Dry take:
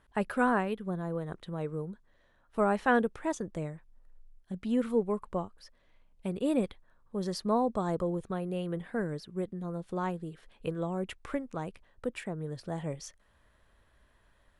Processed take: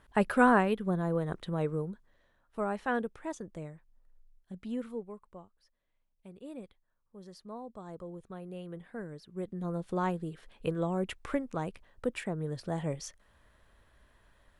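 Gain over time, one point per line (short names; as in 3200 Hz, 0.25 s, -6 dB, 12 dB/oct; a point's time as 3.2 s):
1.64 s +4 dB
2.6 s -6 dB
4.68 s -6 dB
5.25 s -16 dB
7.62 s -16 dB
8.49 s -8.5 dB
9.19 s -8.5 dB
9.65 s +2 dB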